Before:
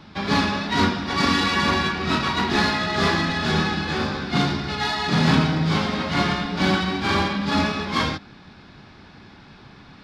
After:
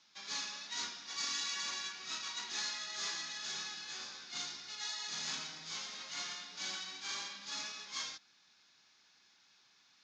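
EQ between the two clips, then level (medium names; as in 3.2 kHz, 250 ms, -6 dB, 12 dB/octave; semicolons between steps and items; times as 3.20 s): band-pass filter 6.6 kHz, Q 7.9; distance through air 97 m; +9.5 dB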